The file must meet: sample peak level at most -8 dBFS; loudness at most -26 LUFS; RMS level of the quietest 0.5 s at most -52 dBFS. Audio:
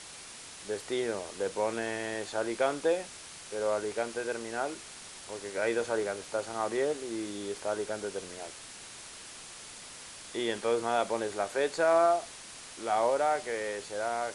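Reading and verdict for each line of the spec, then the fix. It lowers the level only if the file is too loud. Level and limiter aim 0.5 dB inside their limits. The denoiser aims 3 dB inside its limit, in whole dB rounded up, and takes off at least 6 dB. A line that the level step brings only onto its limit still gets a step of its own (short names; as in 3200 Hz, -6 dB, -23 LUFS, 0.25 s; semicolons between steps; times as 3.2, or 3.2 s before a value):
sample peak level -15.0 dBFS: OK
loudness -32.0 LUFS: OK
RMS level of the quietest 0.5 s -47 dBFS: fail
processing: denoiser 8 dB, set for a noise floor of -47 dBFS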